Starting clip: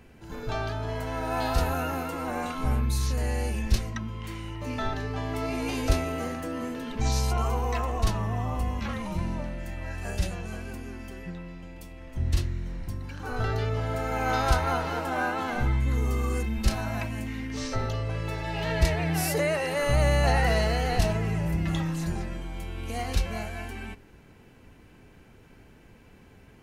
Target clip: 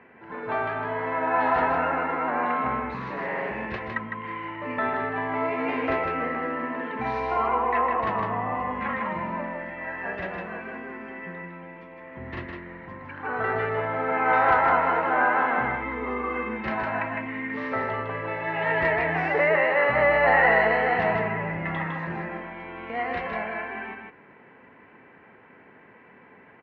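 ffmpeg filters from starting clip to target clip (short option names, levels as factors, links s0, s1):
-filter_complex "[0:a]asettb=1/sr,asplit=3[s0][s1][s2];[s0]atrim=end=2.944[s3];[s1]atrim=start=2.94:end=3.51,asetpts=PTS-STARTPTS,afade=t=in:d=0.004:c=qsin,afade=t=out:st=0.566:d=0.004:c=qsin,aeval=exprs='abs(val(0))':c=same[s4];[s2]atrim=start=3.506[s5];[s3][s4]acrossfade=d=0.004:c1=hsin:c2=qsin[s6];[s6][s5]acrossfade=d=0.004:c1=qsin:c2=hsin,highpass=270,equalizer=f=310:t=q:w=4:g=-4,equalizer=f=1000:t=q:w=4:g=6,equalizer=f=1900:t=q:w=4:g=8,lowpass=f=2300:w=0.5412,lowpass=f=2300:w=1.3066,aecho=1:1:157:0.596,volume=1.58"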